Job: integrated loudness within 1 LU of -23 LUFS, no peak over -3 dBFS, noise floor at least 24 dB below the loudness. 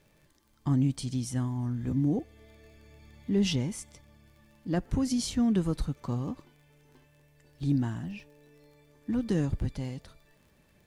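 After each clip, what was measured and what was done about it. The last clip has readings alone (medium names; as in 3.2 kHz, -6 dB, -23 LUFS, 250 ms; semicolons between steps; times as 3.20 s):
tick rate 35 per s; loudness -30.5 LUFS; peak level -15.5 dBFS; loudness target -23.0 LUFS
-> de-click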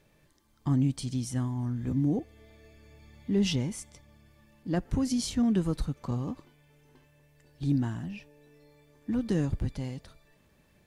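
tick rate 0.18 per s; loudness -30.5 LUFS; peak level -15.5 dBFS; loudness target -23.0 LUFS
-> trim +7.5 dB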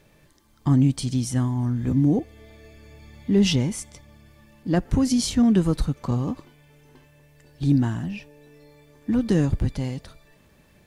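loudness -23.0 LUFS; peak level -8.0 dBFS; noise floor -58 dBFS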